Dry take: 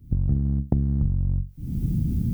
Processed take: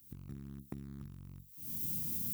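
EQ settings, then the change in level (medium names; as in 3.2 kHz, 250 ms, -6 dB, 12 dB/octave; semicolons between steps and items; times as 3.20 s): differentiator; high-order bell 640 Hz -10.5 dB 1.1 oct; +10.5 dB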